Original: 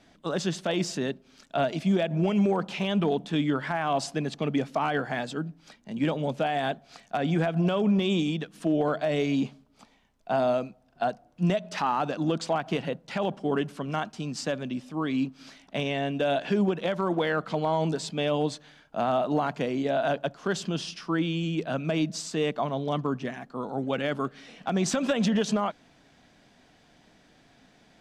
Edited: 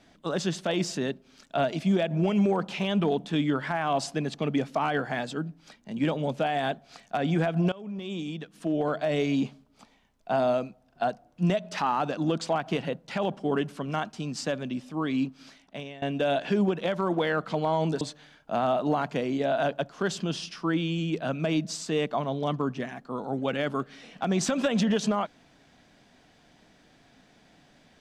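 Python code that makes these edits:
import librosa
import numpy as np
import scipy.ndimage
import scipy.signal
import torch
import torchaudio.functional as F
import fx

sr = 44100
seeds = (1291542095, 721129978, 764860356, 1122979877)

y = fx.edit(x, sr, fx.fade_in_from(start_s=7.72, length_s=1.41, floor_db=-21.0),
    fx.fade_out_to(start_s=15.27, length_s=0.75, floor_db=-19.0),
    fx.cut(start_s=18.01, length_s=0.45), tone=tone)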